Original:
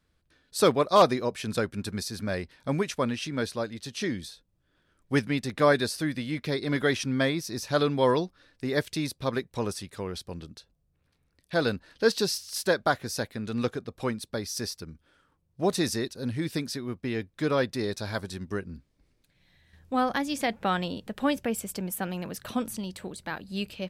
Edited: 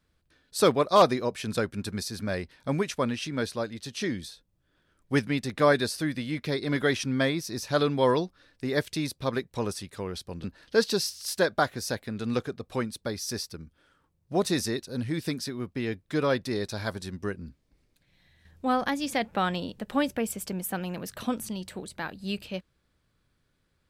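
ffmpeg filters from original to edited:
ffmpeg -i in.wav -filter_complex "[0:a]asplit=2[link_01][link_02];[link_01]atrim=end=10.442[link_03];[link_02]atrim=start=11.718[link_04];[link_03][link_04]acrossfade=duration=0.004:curve1=hsin:curve2=hsin" out.wav

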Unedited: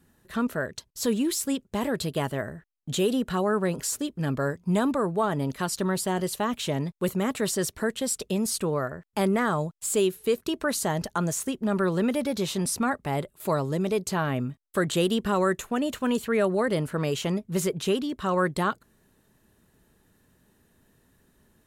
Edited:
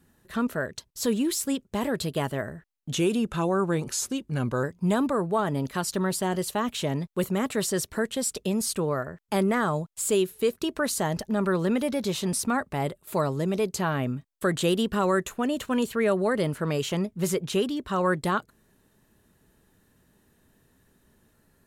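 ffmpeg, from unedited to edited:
ffmpeg -i in.wav -filter_complex "[0:a]asplit=4[link_01][link_02][link_03][link_04];[link_01]atrim=end=2.944[link_05];[link_02]atrim=start=2.94:end=4.48,asetpts=PTS-STARTPTS,asetrate=40131,aresample=44100[link_06];[link_03]atrim=start=4.476:end=11.132[link_07];[link_04]atrim=start=11.608[link_08];[link_05][link_06]acrossfade=duration=0.004:curve1=hsin:curve2=hsin[link_09];[link_09][link_07]acrossfade=duration=0.004:curve1=hsin:curve2=hsin[link_10];[link_10][link_08]acrossfade=duration=0.004:curve1=hsin:curve2=hsin" out.wav

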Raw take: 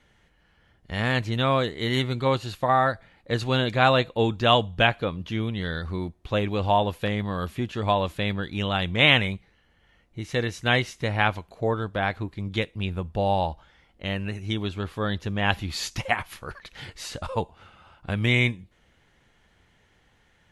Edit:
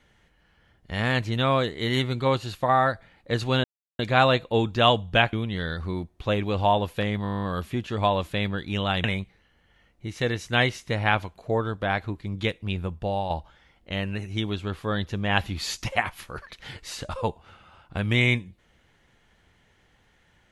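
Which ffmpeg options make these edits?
ffmpeg -i in.wav -filter_complex "[0:a]asplit=15[link_01][link_02][link_03][link_04][link_05][link_06][link_07][link_08][link_09][link_10][link_11][link_12][link_13][link_14][link_15];[link_01]atrim=end=3.64,asetpts=PTS-STARTPTS,afade=type=out:start_time=3.636:duration=0.004:curve=hsin,apad=pad_dur=0.35[link_16];[link_02]atrim=start=3.64:end=4.982,asetpts=PTS-STARTPTS,afade=type=in:duration=0.004:curve=hsin[link_17];[link_03]atrim=start=5.378:end=7.302[link_18];[link_04]atrim=start=7.278:end=7.302[link_19];[link_05]atrim=start=7.278:end=7.302[link_20];[link_06]atrim=start=7.278:end=7.302[link_21];[link_07]atrim=start=7.278:end=7.302[link_22];[link_08]atrim=start=7.278:end=7.302[link_23];[link_09]atrim=start=7.278:end=7.302[link_24];[link_10]atrim=start=7.278:end=7.302[link_25];[link_11]atrim=start=7.278:end=7.302[link_26];[link_12]atrim=start=7.278:end=7.302[link_27];[link_13]atrim=start=7.278:end=8.892[link_28];[link_14]atrim=start=9.168:end=13.43,asetpts=PTS-STARTPTS,afade=type=out:start_time=3.802:duration=0.46:silence=0.446684[link_29];[link_15]atrim=start=13.43,asetpts=PTS-STARTPTS,afade=type=in:duration=0.004:curve=hsin:silence=0.446684[link_30];[link_16][link_17]concat=n=2:v=0:a=1[link_31];[link_31][link_18]acrossfade=duration=0.004:curve1=hsin:curve2=hsin[link_32];[link_32][link_19]acrossfade=duration=0.004:curve1=hsin:curve2=hsin[link_33];[link_33][link_20]acrossfade=duration=0.004:curve1=hsin:curve2=hsin[link_34];[link_34][link_21]acrossfade=duration=0.004:curve1=hsin:curve2=hsin[link_35];[link_35][link_22]acrossfade=duration=0.004:curve1=hsin:curve2=hsin[link_36];[link_36][link_23]acrossfade=duration=0.004:curve1=hsin:curve2=hsin[link_37];[link_37][link_24]acrossfade=duration=0.004:curve1=hsin:curve2=hsin[link_38];[link_38][link_25]acrossfade=duration=0.004:curve1=hsin:curve2=hsin[link_39];[link_39][link_26]acrossfade=duration=0.004:curve1=hsin:curve2=hsin[link_40];[link_40][link_27]acrossfade=duration=0.004:curve1=hsin:curve2=hsin[link_41];[link_41][link_28]acrossfade=duration=0.004:curve1=hsin:curve2=hsin[link_42];[link_29][link_30]concat=n=2:v=0:a=1[link_43];[link_42][link_43]acrossfade=duration=0.004:curve1=hsin:curve2=hsin" out.wav

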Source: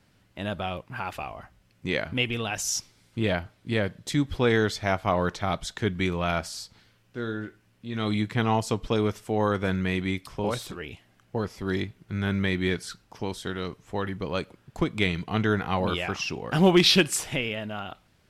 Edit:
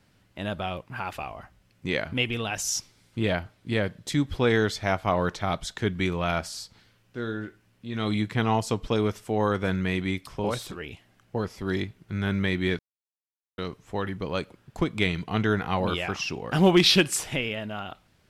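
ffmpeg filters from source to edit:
ffmpeg -i in.wav -filter_complex "[0:a]asplit=3[link_01][link_02][link_03];[link_01]atrim=end=12.79,asetpts=PTS-STARTPTS,afade=type=out:start_time=12.786:duration=0.004:curve=hsin[link_04];[link_02]atrim=start=12.79:end=13.58,asetpts=PTS-STARTPTS,volume=0[link_05];[link_03]atrim=start=13.58,asetpts=PTS-STARTPTS,afade=type=in:duration=0.004:curve=hsin[link_06];[link_04][link_05][link_06]concat=n=3:v=0:a=1" out.wav

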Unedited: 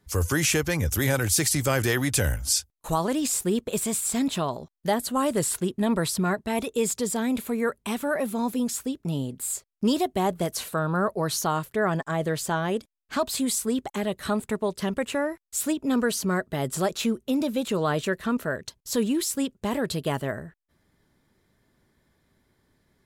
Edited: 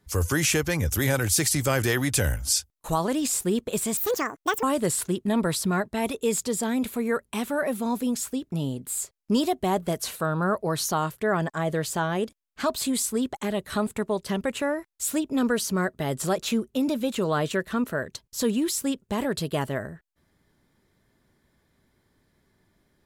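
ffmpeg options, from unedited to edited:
ffmpeg -i in.wav -filter_complex "[0:a]asplit=3[link_01][link_02][link_03];[link_01]atrim=end=3.974[link_04];[link_02]atrim=start=3.97:end=5.16,asetpts=PTS-STARTPTS,asetrate=79380,aresample=44100[link_05];[link_03]atrim=start=5.156[link_06];[link_04][link_05]acrossfade=duration=0.004:curve1=hsin:curve2=hsin[link_07];[link_07][link_06]acrossfade=duration=0.004:curve1=hsin:curve2=hsin" out.wav

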